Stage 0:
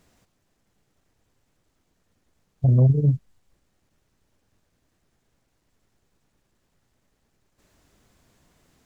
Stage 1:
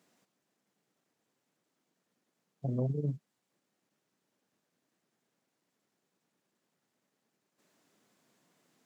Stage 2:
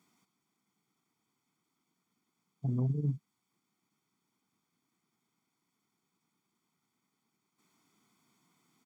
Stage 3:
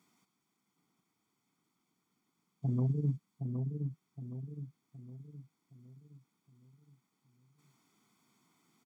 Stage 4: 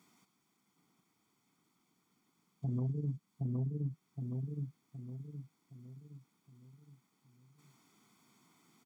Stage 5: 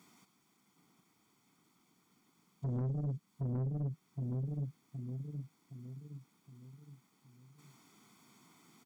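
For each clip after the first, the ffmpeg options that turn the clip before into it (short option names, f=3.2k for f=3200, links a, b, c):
-af "highpass=f=170:w=0.5412,highpass=f=170:w=1.3066,volume=-7.5dB"
-af "aecho=1:1:0.9:0.83,volume=-2.5dB"
-filter_complex "[0:a]asplit=2[a][b];[b]adelay=767,lowpass=f=920:p=1,volume=-5dB,asplit=2[c][d];[d]adelay=767,lowpass=f=920:p=1,volume=0.46,asplit=2[e][f];[f]adelay=767,lowpass=f=920:p=1,volume=0.46,asplit=2[g][h];[h]adelay=767,lowpass=f=920:p=1,volume=0.46,asplit=2[i][j];[j]adelay=767,lowpass=f=920:p=1,volume=0.46,asplit=2[k][l];[l]adelay=767,lowpass=f=920:p=1,volume=0.46[m];[a][c][e][g][i][k][m]amix=inputs=7:normalize=0"
-af "alimiter=level_in=8.5dB:limit=-24dB:level=0:latency=1:release=312,volume=-8.5dB,volume=4dB"
-af "asoftclip=type=tanh:threshold=-36dB,volume=4.5dB"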